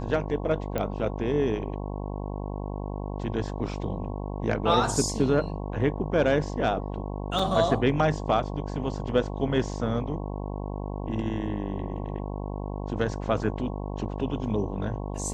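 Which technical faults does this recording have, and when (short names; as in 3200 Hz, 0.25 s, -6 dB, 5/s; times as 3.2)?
buzz 50 Hz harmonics 22 -33 dBFS
0.78 pop -15 dBFS
7.39 gap 4.1 ms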